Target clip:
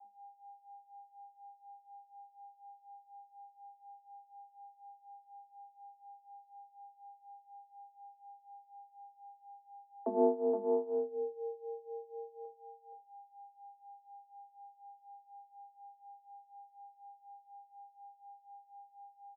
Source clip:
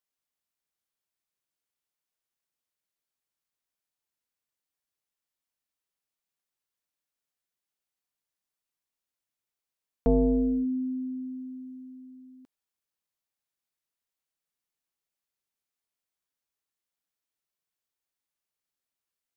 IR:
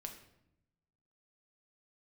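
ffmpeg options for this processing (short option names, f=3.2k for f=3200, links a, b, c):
-filter_complex "[0:a]bandreject=f=50:t=h:w=6,bandreject=f=100:t=h:w=6,bandreject=f=150:t=h:w=6,bandreject=f=200:t=h:w=6,bandreject=f=250:t=h:w=6,asplit=2[a][b];[b]aecho=0:1:471:0.473[c];[a][c]amix=inputs=2:normalize=0,aeval=exprs='val(0)+0.00355*sin(2*PI*600*n/s)':c=same,asplit=2[d][e];[e]asoftclip=type=hard:threshold=-25dB,volume=-7.5dB[f];[d][f]amix=inputs=2:normalize=0[g];[1:a]atrim=start_sample=2205,afade=t=out:st=0.18:d=0.01,atrim=end_sample=8379[h];[g][h]afir=irnorm=-1:irlink=0,tremolo=f=4.1:d=0.85,adynamicequalizer=threshold=0.00562:dfrequency=240:dqfactor=1.7:tfrequency=240:tqfactor=1.7:attack=5:release=100:ratio=0.375:range=3:mode=cutabove:tftype=bell,afreqshift=190,lowpass=f=1k:w=0.5412,lowpass=f=1k:w=1.3066,afreqshift=14"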